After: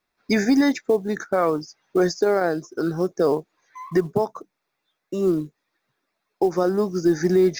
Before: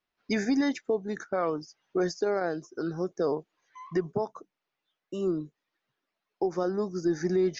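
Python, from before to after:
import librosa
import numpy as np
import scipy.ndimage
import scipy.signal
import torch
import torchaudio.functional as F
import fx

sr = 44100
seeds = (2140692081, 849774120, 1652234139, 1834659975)

y = fx.notch(x, sr, hz=3000.0, q=5.6)
y = fx.quant_float(y, sr, bits=4)
y = y * librosa.db_to_amplitude(8.0)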